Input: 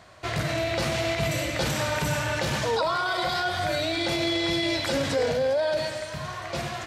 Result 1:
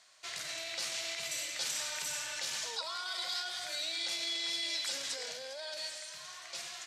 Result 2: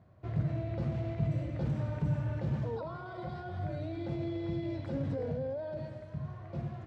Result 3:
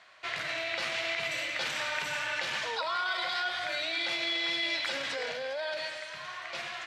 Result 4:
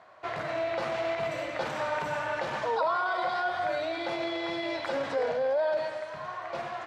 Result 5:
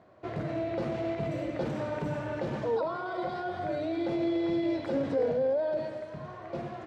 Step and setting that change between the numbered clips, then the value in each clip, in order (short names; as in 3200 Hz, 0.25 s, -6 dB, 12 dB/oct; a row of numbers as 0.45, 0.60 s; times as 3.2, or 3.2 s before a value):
band-pass, frequency: 6900, 120, 2400, 900, 330 Hz